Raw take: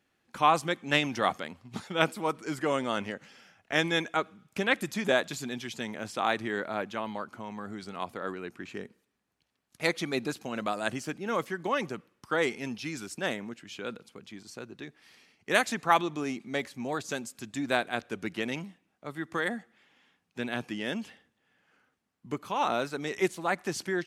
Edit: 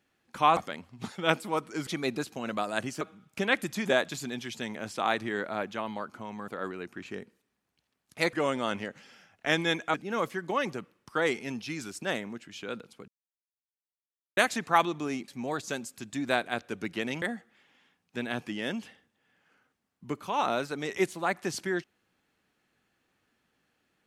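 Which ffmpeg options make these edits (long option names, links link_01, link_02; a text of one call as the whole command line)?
ffmpeg -i in.wav -filter_complex "[0:a]asplit=11[link_01][link_02][link_03][link_04][link_05][link_06][link_07][link_08][link_09][link_10][link_11];[link_01]atrim=end=0.572[link_12];[link_02]atrim=start=1.288:end=2.592[link_13];[link_03]atrim=start=9.958:end=11.102[link_14];[link_04]atrim=start=4.198:end=7.672[link_15];[link_05]atrim=start=8.108:end=9.962[link_16];[link_06]atrim=start=2.588:end=4.202[link_17];[link_07]atrim=start=11.098:end=14.24,asetpts=PTS-STARTPTS,afade=type=out:start_time=3.138:duration=0.004:curve=hsin[link_18];[link_08]atrim=start=14.24:end=15.53,asetpts=PTS-STARTPTS,volume=0[link_19];[link_09]atrim=start=15.53:end=16.442,asetpts=PTS-STARTPTS,afade=type=in:duration=0.004:curve=hsin[link_20];[link_10]atrim=start=16.688:end=18.632[link_21];[link_11]atrim=start=19.438[link_22];[link_12][link_13]acrossfade=duration=0.004:curve1=hsin:curve2=hsin[link_23];[link_23][link_14]acrossfade=duration=0.004:curve1=hsin:curve2=hsin[link_24];[link_24][link_15]acrossfade=duration=0.004:curve1=hsin:curve2=hsin[link_25];[link_25][link_16]acrossfade=duration=0.004:curve1=hsin:curve2=hsin[link_26];[link_26][link_17]acrossfade=duration=0.004:curve1=hsin:curve2=hsin[link_27];[link_18][link_19][link_20]concat=n=3:v=0:a=1[link_28];[link_27][link_28]acrossfade=duration=0.004:curve1=hsin:curve2=hsin[link_29];[link_29][link_21]acrossfade=duration=0.004:curve1=hsin:curve2=hsin[link_30];[link_30][link_22]acrossfade=duration=0.004:curve1=hsin:curve2=hsin" out.wav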